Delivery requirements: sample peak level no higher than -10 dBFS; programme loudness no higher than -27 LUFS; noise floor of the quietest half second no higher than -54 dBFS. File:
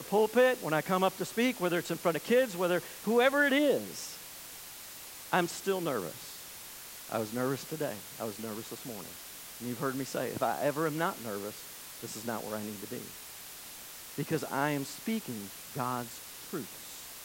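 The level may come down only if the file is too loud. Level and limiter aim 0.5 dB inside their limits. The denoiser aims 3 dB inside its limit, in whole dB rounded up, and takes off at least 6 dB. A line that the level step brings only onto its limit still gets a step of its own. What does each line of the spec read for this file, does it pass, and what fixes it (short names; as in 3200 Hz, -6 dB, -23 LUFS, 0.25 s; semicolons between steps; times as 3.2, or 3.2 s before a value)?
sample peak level -12.0 dBFS: OK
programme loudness -32.5 LUFS: OK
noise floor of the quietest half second -47 dBFS: fail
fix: denoiser 10 dB, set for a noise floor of -47 dBFS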